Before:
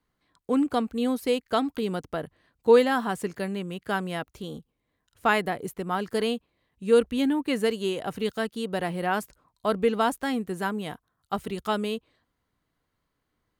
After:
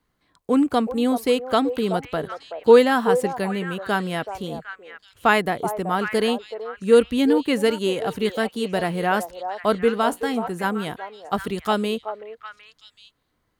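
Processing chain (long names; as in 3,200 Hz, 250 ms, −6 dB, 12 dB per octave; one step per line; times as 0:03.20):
0:09.74–0:10.64: tuned comb filter 58 Hz, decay 0.19 s, harmonics all, mix 50%
on a send: echo through a band-pass that steps 378 ms, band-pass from 660 Hz, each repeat 1.4 octaves, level −5.5 dB
on the sum: level +5 dB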